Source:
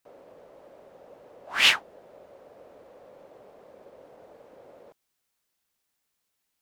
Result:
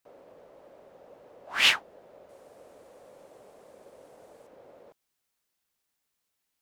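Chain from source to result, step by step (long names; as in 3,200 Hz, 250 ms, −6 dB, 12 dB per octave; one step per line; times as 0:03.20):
0:02.29–0:04.47: parametric band 8,900 Hz +12.5 dB 1.4 octaves
level −2 dB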